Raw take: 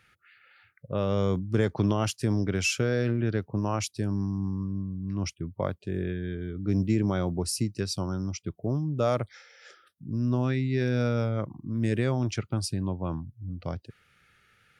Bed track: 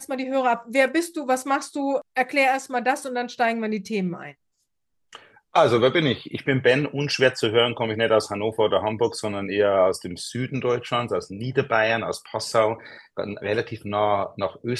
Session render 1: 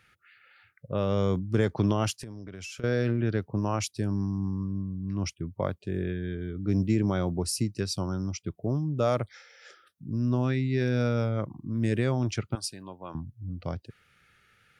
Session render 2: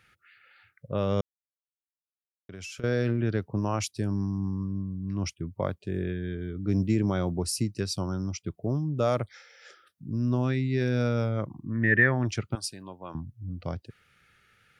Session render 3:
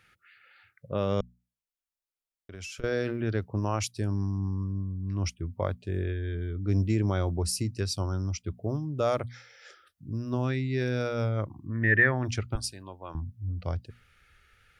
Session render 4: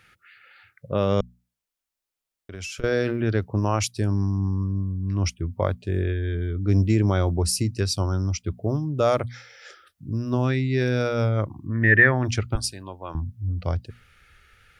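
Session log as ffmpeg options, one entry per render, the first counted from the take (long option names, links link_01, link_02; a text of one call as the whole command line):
ffmpeg -i in.wav -filter_complex "[0:a]asettb=1/sr,asplit=3[link_01][link_02][link_03];[link_01]atrim=end=2.174[link_04];[link_02]atrim=start=2.17:end=2.84,asetpts=PTS-STARTPTS,afade=type=in:duration=0.004:curve=qsin,afade=type=out:start_time=0.666:duration=0.004:curve=qsin,acompressor=threshold=-36dB:ratio=20:attack=3.2:release=140:knee=1:detection=peak[link_05];[link_03]atrim=start=2.836[link_06];[link_04][link_05]acrossfade=duration=0.004:curve1=hsin:curve2=qsin[link_07];[link_07][link_06]acrossfade=duration=0.004:curve1=qsin:curve2=hsin,asettb=1/sr,asplit=3[link_08][link_09][link_10];[link_08]atrim=end=12.554[link_11];[link_09]atrim=start=12.55:end=13.15,asetpts=PTS-STARTPTS,afade=type=in:duration=0.004:curve=qsin,afade=type=out:start_time=0.596:duration=0.004:curve=qsin,highpass=frequency=1000:poles=1[link_12];[link_10]atrim=start=13.146[link_13];[link_11][link_12]acrossfade=duration=0.004:curve1=hsin:curve2=qsin[link_14];[link_14][link_13]acrossfade=duration=0.004:curve1=qsin:curve2=hsin" out.wav
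ffmpeg -i in.wav -filter_complex "[0:a]asplit=3[link_01][link_02][link_03];[link_01]afade=type=out:start_time=11.66:duration=0.02[link_04];[link_02]lowpass=frequency=1800:width_type=q:width=14,afade=type=in:start_time=11.66:duration=0.02,afade=type=out:start_time=12.24:duration=0.02[link_05];[link_03]afade=type=in:start_time=12.24:duration=0.02[link_06];[link_04][link_05][link_06]amix=inputs=3:normalize=0,asplit=3[link_07][link_08][link_09];[link_07]atrim=end=1.21,asetpts=PTS-STARTPTS,afade=type=out:start_time=1.206:duration=0.004:curve=hsin[link_10];[link_08]atrim=start=1.21:end=2.49,asetpts=PTS-STARTPTS,volume=0[link_11];[link_09]atrim=start=2.49,asetpts=PTS-STARTPTS,afade=type=in:duration=0.004:curve=hsin[link_12];[link_10][link_11][link_12]concat=n=3:v=0:a=1" out.wav
ffmpeg -i in.wav -af "bandreject=frequency=60:width_type=h:width=6,bandreject=frequency=120:width_type=h:width=6,bandreject=frequency=180:width_type=h:width=6,bandreject=frequency=240:width_type=h:width=6,asubboost=boost=9.5:cutoff=52" out.wav
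ffmpeg -i in.wav -af "volume=6dB" out.wav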